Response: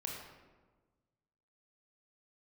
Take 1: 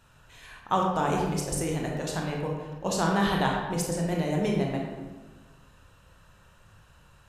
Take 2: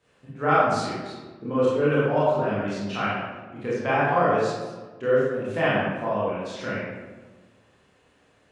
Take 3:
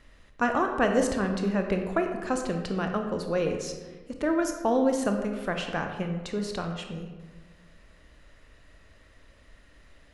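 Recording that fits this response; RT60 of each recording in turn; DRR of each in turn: 1; 1.4, 1.4, 1.4 s; -1.5, -10.0, 4.0 dB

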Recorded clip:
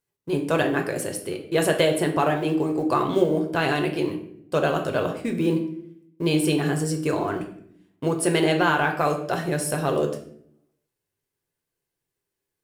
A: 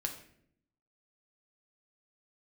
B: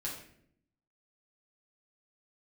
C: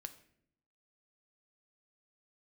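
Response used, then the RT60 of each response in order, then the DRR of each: A; 0.65, 0.65, 0.70 s; 3.0, -5.5, 9.0 dB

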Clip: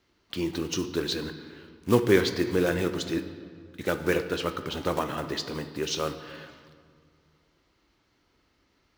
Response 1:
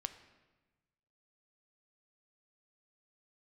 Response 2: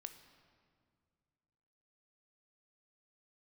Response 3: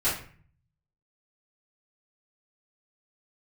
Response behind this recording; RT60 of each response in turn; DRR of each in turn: 2; 1.2, 2.1, 0.45 s; 9.0, 8.0, -13.5 dB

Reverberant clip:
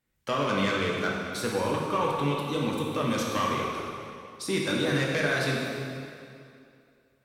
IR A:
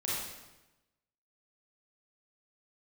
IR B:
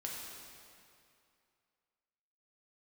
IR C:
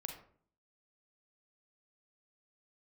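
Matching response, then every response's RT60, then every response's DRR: B; 1.0, 2.5, 0.55 s; -7.5, -3.0, 3.5 dB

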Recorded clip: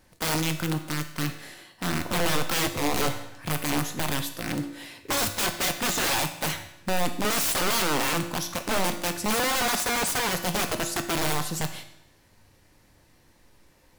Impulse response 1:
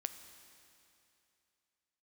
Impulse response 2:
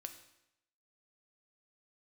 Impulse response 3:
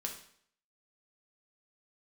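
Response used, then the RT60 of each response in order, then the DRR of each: 2; 2.8, 0.80, 0.60 s; 9.0, 6.0, 1.5 dB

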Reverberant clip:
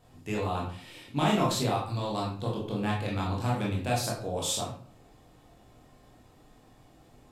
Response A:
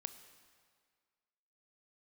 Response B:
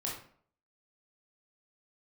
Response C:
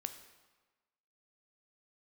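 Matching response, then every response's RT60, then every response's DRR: B; 1.9, 0.55, 1.3 s; 10.5, -4.0, 8.0 dB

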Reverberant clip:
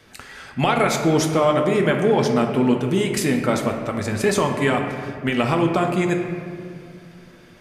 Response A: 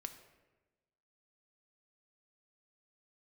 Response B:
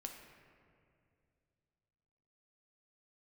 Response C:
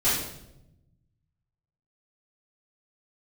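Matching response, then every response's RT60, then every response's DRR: B; 1.2, 2.4, 0.85 s; 7.5, 2.5, -13.0 dB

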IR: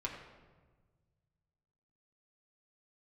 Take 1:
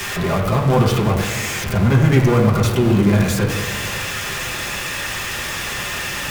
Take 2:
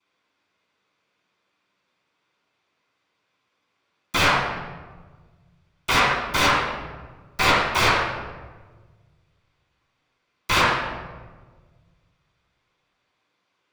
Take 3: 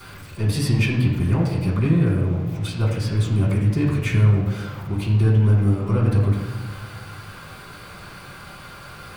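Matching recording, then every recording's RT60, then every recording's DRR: 1; 1.4, 1.4, 1.4 s; -3.0, -22.0, -13.0 dB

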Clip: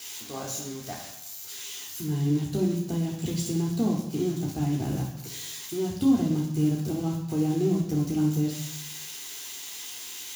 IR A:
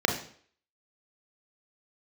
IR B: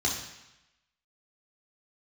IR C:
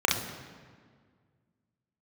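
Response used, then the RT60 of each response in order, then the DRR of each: B; 0.55, 0.90, 1.8 s; 2.0, -3.5, -2.0 dB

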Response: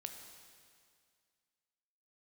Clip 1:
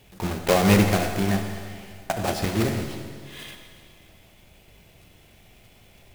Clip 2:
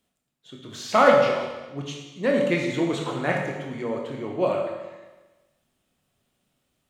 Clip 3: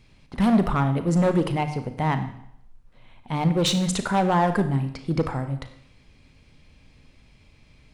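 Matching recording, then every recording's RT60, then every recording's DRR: 1; 2.1, 1.2, 0.70 s; 4.5, -0.5, 8.5 dB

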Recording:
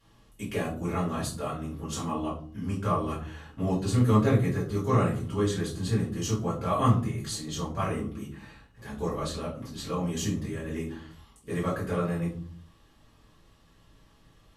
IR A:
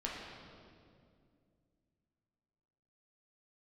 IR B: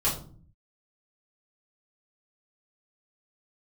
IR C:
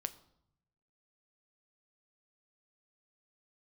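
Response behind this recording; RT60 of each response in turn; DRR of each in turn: B; 2.3, 0.45, 0.75 s; -4.5, -8.5, 11.0 dB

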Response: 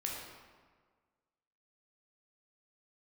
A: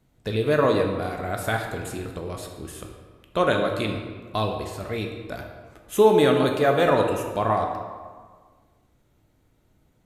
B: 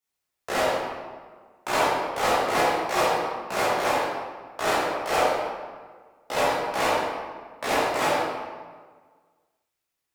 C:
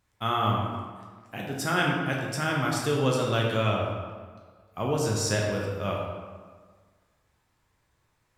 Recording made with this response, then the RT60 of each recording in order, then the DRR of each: C; 1.6, 1.6, 1.6 s; 2.0, -10.5, -2.5 dB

